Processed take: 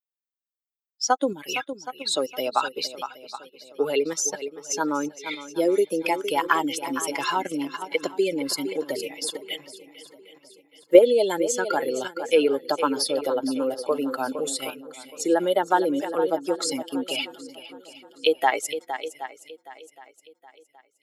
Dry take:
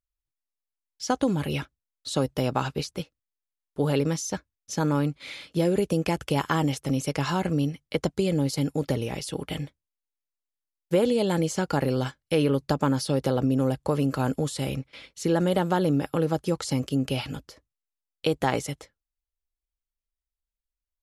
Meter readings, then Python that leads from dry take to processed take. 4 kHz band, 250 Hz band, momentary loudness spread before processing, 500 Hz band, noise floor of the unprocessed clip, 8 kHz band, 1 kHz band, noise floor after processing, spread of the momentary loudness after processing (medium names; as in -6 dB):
+5.0 dB, -2.5 dB, 11 LU, +4.5 dB, under -85 dBFS, +7.0 dB, +5.0 dB, -78 dBFS, 15 LU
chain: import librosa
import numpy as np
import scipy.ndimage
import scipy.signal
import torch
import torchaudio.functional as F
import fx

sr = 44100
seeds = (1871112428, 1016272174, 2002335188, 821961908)

p1 = fx.bin_expand(x, sr, power=2.0)
p2 = scipy.signal.sosfilt(scipy.signal.butter(4, 360.0, 'highpass', fs=sr, output='sos'), p1)
p3 = fx.echo_swing(p2, sr, ms=770, ratio=1.5, feedback_pct=32, wet_db=-13.0)
p4 = fx.level_steps(p3, sr, step_db=23)
p5 = p3 + (p4 * librosa.db_to_amplitude(1.0))
y = p5 * librosa.db_to_amplitude(8.5)